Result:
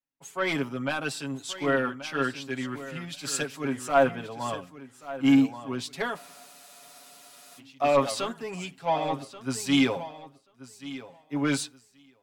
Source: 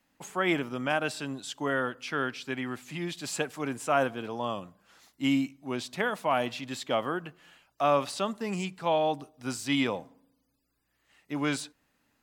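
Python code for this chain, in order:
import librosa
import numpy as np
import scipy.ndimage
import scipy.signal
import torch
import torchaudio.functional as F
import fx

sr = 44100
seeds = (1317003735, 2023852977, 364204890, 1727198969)

y = fx.vibrato(x, sr, rate_hz=11.0, depth_cents=23.0)
y = 10.0 ** (-20.0 / 20.0) * np.tanh(y / 10.0 ** (-20.0 / 20.0))
y = y + 0.75 * np.pad(y, (int(7.3 * sr / 1000.0), 0))[:len(y)]
y = fx.echo_feedback(y, sr, ms=1133, feedback_pct=24, wet_db=-9.5)
y = fx.spec_freeze(y, sr, seeds[0], at_s=6.2, hold_s=1.38)
y = fx.band_widen(y, sr, depth_pct=70)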